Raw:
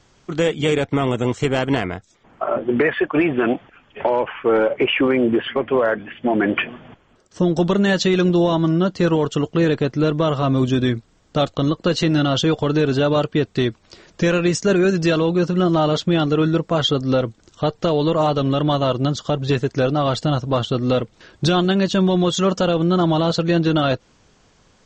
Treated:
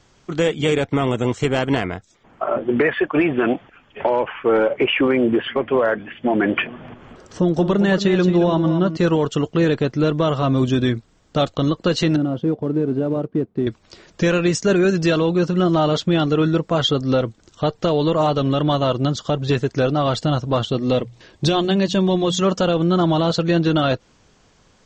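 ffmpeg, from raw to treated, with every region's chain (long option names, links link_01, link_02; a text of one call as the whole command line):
ffmpeg -i in.wav -filter_complex "[0:a]asettb=1/sr,asplit=3[link_01][link_02][link_03];[link_01]atrim=end=6.664[link_04];[link_02]atrim=start=6.66:end=8.97,asetpts=PTS-STARTPTS,afade=type=in:duration=0.004:curve=qsin,afade=type=out:start_time=2.306:duration=0.004:curve=qsin,highshelf=frequency=3400:gain=-8.5,acompressor=mode=upward:threshold=-29dB:ratio=2.5:attack=3.2:release=140:knee=2.83:detection=peak,aecho=1:1:224:0.316,atrim=end_sample=101871[link_05];[link_03]atrim=start=8.966[link_06];[link_04][link_05]acrossfade=duration=0.004:curve1=hsin:curve2=qsin[link_07];[link_07][link_06]acrossfade=duration=0.004:curve1=qsin:curve2=hsin,asettb=1/sr,asplit=3[link_08][link_09][link_10];[link_08]atrim=end=12.164[link_11];[link_09]atrim=start=12.16:end=13.67,asetpts=PTS-STARTPTS,afade=type=in:duration=0.004:curve=qsin,afade=type=out:start_time=1.506:duration=0.004:curve=qsin,aemphasis=mode=reproduction:type=50kf,acrusher=bits=4:mode=log:mix=0:aa=0.000001,bandpass=frequency=260:width_type=q:width=1[link_12];[link_10]atrim=start=13.666[link_13];[link_11][link_12]acrossfade=duration=0.004:curve1=hsin:curve2=qsin[link_14];[link_14][link_13]acrossfade=duration=0.004:curve1=qsin:curve2=hsin,asettb=1/sr,asplit=3[link_15][link_16][link_17];[link_15]atrim=end=20.694[link_18];[link_16]atrim=start=20.69:end=22.42,asetpts=PTS-STARTPTS,afade=type=in:duration=0.004:curve=qsin,afade=type=out:start_time=1.726:duration=0.004:curve=qsin,equalizer=frequency=1400:width_type=o:width=0.27:gain=-9,bandreject=frequency=60:width_type=h:width=6,bandreject=frequency=120:width_type=h:width=6,bandreject=frequency=180:width_type=h:width=6[link_19];[link_17]atrim=start=22.416[link_20];[link_18][link_19]acrossfade=duration=0.004:curve1=hsin:curve2=qsin[link_21];[link_21][link_20]acrossfade=duration=0.004:curve1=qsin:curve2=hsin" out.wav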